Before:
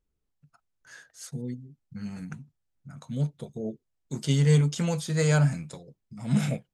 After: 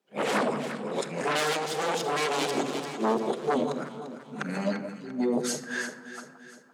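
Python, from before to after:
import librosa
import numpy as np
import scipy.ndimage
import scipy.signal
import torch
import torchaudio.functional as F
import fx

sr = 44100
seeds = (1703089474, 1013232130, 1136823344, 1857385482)

p1 = x[::-1].copy()
p2 = fx.high_shelf(p1, sr, hz=5100.0, db=-11.0)
p3 = fx.room_shoebox(p2, sr, seeds[0], volume_m3=3500.0, walls='furnished', distance_m=1.2)
p4 = fx.fold_sine(p3, sr, drive_db=19, ceiling_db=-10.5)
p5 = p3 + (p4 * 10.0 ** (-8.0 / 20.0))
p6 = scipy.signal.sosfilt(scipy.signal.butter(4, 280.0, 'highpass', fs=sr, output='sos'), p5)
p7 = p6 + fx.echo_alternate(p6, sr, ms=172, hz=1200.0, feedback_pct=69, wet_db=-9.0, dry=0)
p8 = fx.rider(p7, sr, range_db=4, speed_s=0.5)
y = p8 * 10.0 ** (-2.5 / 20.0)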